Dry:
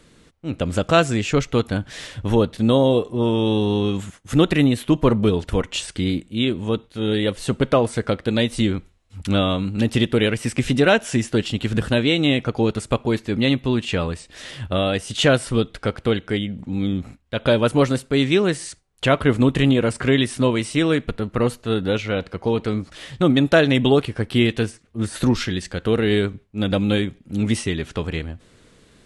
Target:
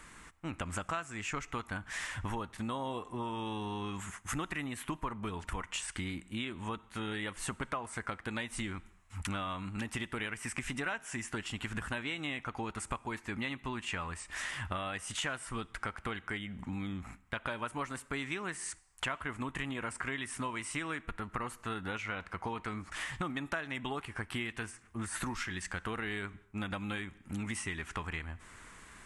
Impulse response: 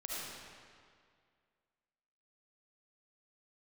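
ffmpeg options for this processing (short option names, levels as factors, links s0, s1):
-filter_complex "[0:a]equalizer=f=125:t=o:w=1:g=-8,equalizer=f=250:t=o:w=1:g=-4,equalizer=f=500:t=o:w=1:g=-12,equalizer=f=1000:t=o:w=1:g=9,equalizer=f=2000:t=o:w=1:g=6,equalizer=f=4000:t=o:w=1:g=-9,equalizer=f=8000:t=o:w=1:g=5,acompressor=threshold=0.0158:ratio=6,asplit=2[s0][s1];[1:a]atrim=start_sample=2205,afade=t=out:st=0.31:d=0.01,atrim=end_sample=14112[s2];[s1][s2]afir=irnorm=-1:irlink=0,volume=0.0668[s3];[s0][s3]amix=inputs=2:normalize=0"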